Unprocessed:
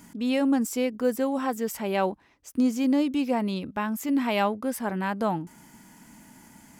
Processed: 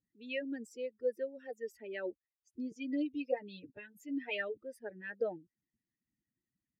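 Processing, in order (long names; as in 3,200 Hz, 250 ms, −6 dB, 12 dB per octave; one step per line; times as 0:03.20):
spectral dynamics exaggerated over time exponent 2
0:02.71–0:04.57: comb filter 6.7 ms, depth 98%
harmonic and percussive parts rebalanced harmonic −17 dB
formant filter e
low shelf with overshoot 480 Hz +11 dB, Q 1.5
level +8.5 dB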